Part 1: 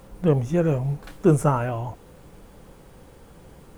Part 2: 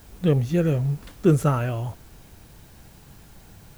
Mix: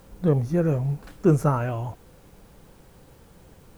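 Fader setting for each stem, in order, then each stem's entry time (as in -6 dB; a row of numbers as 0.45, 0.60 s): -5.0, -8.5 dB; 0.00, 0.00 s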